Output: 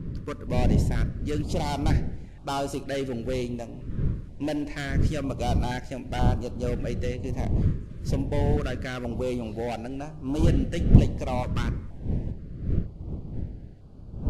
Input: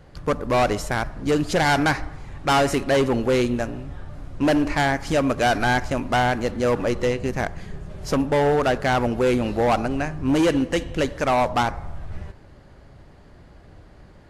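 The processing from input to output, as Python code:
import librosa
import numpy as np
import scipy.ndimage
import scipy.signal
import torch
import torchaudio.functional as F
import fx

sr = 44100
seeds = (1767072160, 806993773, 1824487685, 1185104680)

y = fx.dmg_wind(x, sr, seeds[0], corner_hz=130.0, level_db=-18.0)
y = fx.filter_held_notch(y, sr, hz=2.1, low_hz=760.0, high_hz=1900.0)
y = y * 10.0 ** (-9.0 / 20.0)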